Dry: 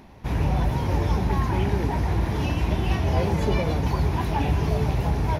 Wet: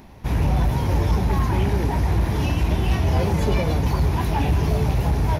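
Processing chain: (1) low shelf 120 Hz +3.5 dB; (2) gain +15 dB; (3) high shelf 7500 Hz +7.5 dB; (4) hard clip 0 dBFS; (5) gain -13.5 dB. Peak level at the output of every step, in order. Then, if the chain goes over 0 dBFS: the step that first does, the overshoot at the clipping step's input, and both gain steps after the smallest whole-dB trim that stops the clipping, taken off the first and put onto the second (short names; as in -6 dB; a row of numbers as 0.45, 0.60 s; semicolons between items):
-8.5, +6.5, +6.5, 0.0, -13.5 dBFS; step 2, 6.5 dB; step 2 +8 dB, step 5 -6.5 dB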